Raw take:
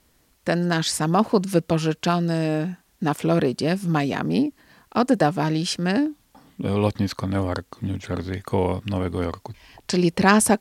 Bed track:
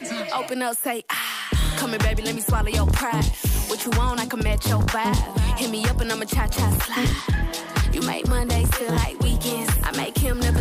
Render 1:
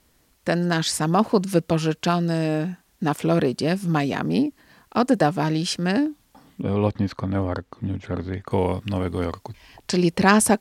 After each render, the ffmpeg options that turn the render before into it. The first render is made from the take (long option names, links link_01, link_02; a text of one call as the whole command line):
ffmpeg -i in.wav -filter_complex "[0:a]asettb=1/sr,asplit=3[link_01][link_02][link_03];[link_01]atrim=end=6.624[link_04];[link_02]atrim=start=6.62:end=8.51,asetpts=PTS-STARTPTS,afade=type=in:duration=0.004:curve=qsin,afade=type=out:start_time=1.886:duration=0.004:curve=qsin,lowpass=frequency=1900:poles=1[link_05];[link_03]atrim=start=8.506[link_06];[link_04][link_05]acrossfade=duration=0.004:curve1=hsin:curve2=qsin[link_07];[link_07][link_06]acrossfade=duration=0.004:curve1=qsin:curve2=hsin" out.wav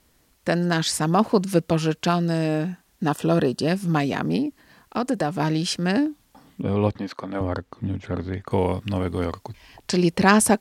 ffmpeg -i in.wav -filter_complex "[0:a]asettb=1/sr,asplit=3[link_01][link_02][link_03];[link_01]atrim=end=3.074[link_04];[link_02]atrim=start=3.07:end=3.68,asetpts=PTS-STARTPTS,afade=type=in:duration=0.004:curve=qsin,afade=type=out:start_time=0.606:duration=0.004:curve=qsin,asuperstop=centerf=2200:order=8:qfactor=5[link_05];[link_03]atrim=start=3.676[link_06];[link_04][link_05]acrossfade=duration=0.004:curve1=hsin:curve2=qsin[link_07];[link_07][link_06]acrossfade=duration=0.004:curve1=qsin:curve2=hsin,asettb=1/sr,asplit=3[link_08][link_09][link_10];[link_08]atrim=end=4.364[link_11];[link_09]atrim=start=4.36:end=5.4,asetpts=PTS-STARTPTS,afade=type=in:duration=0.004:curve=qsin,afade=type=out:start_time=1.036:duration=0.004:curve=qsin,acompressor=threshold=-22dB:ratio=2:attack=3.2:release=140:knee=1:detection=peak[link_12];[link_10]atrim=start=5.396[link_13];[link_11][link_12]acrossfade=duration=0.004:curve1=hsin:curve2=qsin[link_14];[link_14][link_13]acrossfade=duration=0.004:curve1=qsin:curve2=hsin,asettb=1/sr,asplit=3[link_15][link_16][link_17];[link_15]atrim=end=6.984[link_18];[link_16]atrim=start=6.98:end=7.41,asetpts=PTS-STARTPTS,afade=type=in:duration=0.004:curve=qsin,afade=type=out:start_time=0.426:duration=0.004:curve=qsin,highpass=300[link_19];[link_17]atrim=start=7.406[link_20];[link_18][link_19]acrossfade=duration=0.004:curve1=hsin:curve2=qsin[link_21];[link_21][link_20]acrossfade=duration=0.004:curve1=qsin:curve2=hsin" out.wav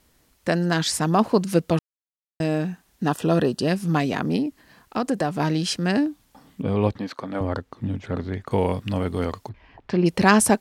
ffmpeg -i in.wav -filter_complex "[0:a]asettb=1/sr,asplit=3[link_01][link_02][link_03];[link_01]atrim=end=9.494[link_04];[link_02]atrim=start=9.49:end=10.06,asetpts=PTS-STARTPTS,afade=type=in:duration=0.004:curve=qsin,afade=type=out:start_time=0.566:duration=0.004:curve=qsin,lowpass=1900[link_05];[link_03]atrim=start=10.056[link_06];[link_04][link_05]acrossfade=duration=0.004:curve1=hsin:curve2=qsin[link_07];[link_07][link_06]acrossfade=duration=0.004:curve1=qsin:curve2=hsin,asplit=3[link_08][link_09][link_10];[link_08]atrim=end=1.79,asetpts=PTS-STARTPTS,afade=type=out:start_time=1.786:duration=0.004:curve=hsin[link_11];[link_09]atrim=start=1.79:end=2.4,asetpts=PTS-STARTPTS,volume=0[link_12];[link_10]atrim=start=2.4,asetpts=PTS-STARTPTS,afade=type=in:duration=0.004:curve=hsin[link_13];[link_11][link_12][link_13]concat=n=3:v=0:a=1" out.wav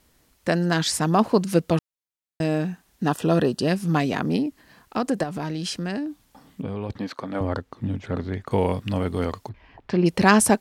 ffmpeg -i in.wav -filter_complex "[0:a]asettb=1/sr,asplit=3[link_01][link_02][link_03];[link_01]atrim=end=5.234[link_04];[link_02]atrim=start=5.23:end=6.9,asetpts=PTS-STARTPTS,afade=type=in:duration=0.004:curve=qsin,afade=type=out:start_time=1.666:duration=0.004:curve=qsin,acompressor=threshold=-25dB:ratio=6:attack=3.2:release=140:knee=1:detection=peak[link_05];[link_03]atrim=start=6.896[link_06];[link_04][link_05]acrossfade=duration=0.004:curve1=hsin:curve2=qsin[link_07];[link_07][link_06]acrossfade=duration=0.004:curve1=qsin:curve2=hsin" out.wav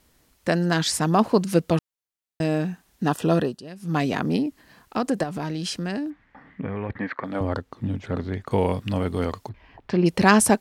ffmpeg -i in.wav -filter_complex "[0:a]asettb=1/sr,asplit=3[link_01][link_02][link_03];[link_01]atrim=end=6.104[link_04];[link_02]atrim=start=6.1:end=7.24,asetpts=PTS-STARTPTS,afade=type=in:duration=0.004:curve=qsin,afade=type=out:start_time=1.136:duration=0.004:curve=qsin,lowpass=frequency=1900:width_type=q:width=5[link_05];[link_03]atrim=start=7.236[link_06];[link_04][link_05]acrossfade=duration=0.004:curve1=hsin:curve2=qsin[link_07];[link_07][link_06]acrossfade=duration=0.004:curve1=qsin:curve2=hsin,asplit=3[link_08][link_09][link_10];[link_08]atrim=end=3.62,asetpts=PTS-STARTPTS,afade=type=out:start_time=3.34:duration=0.28:silence=0.133352[link_11];[link_09]atrim=start=3.62:end=3.75,asetpts=PTS-STARTPTS,volume=-17.5dB[link_12];[link_10]atrim=start=3.75,asetpts=PTS-STARTPTS,afade=type=in:duration=0.28:silence=0.133352[link_13];[link_11][link_12][link_13]concat=n=3:v=0:a=1" out.wav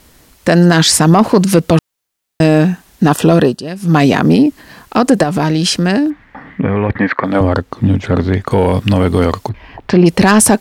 ffmpeg -i in.wav -af "acontrast=82,alimiter=level_in=8.5dB:limit=-1dB:release=50:level=0:latency=1" out.wav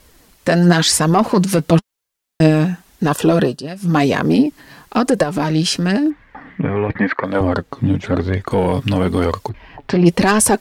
ffmpeg -i in.wav -af "flanger=delay=1.8:depth=5.6:regen=42:speed=0.96:shape=sinusoidal" out.wav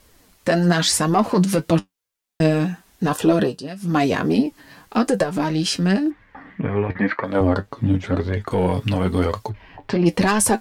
ffmpeg -i in.wav -af "flanger=delay=8.7:depth=2.6:regen=55:speed=1.8:shape=triangular" out.wav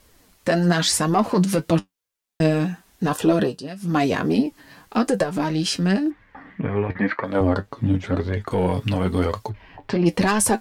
ffmpeg -i in.wav -af "volume=-1.5dB" out.wav